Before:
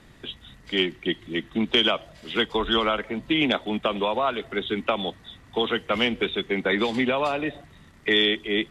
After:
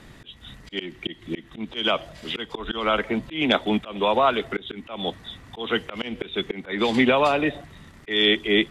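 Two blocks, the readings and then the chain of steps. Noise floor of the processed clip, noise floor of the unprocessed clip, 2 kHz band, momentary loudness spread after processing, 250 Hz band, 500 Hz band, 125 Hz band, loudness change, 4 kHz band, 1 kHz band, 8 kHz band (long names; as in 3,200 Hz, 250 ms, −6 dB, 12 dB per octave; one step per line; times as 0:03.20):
−49 dBFS, −52 dBFS, 0.0 dB, 16 LU, +0.5 dB, +1.0 dB, +1.0 dB, +0.5 dB, −1.0 dB, +2.5 dB, can't be measured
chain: volume swells 258 ms
level +5 dB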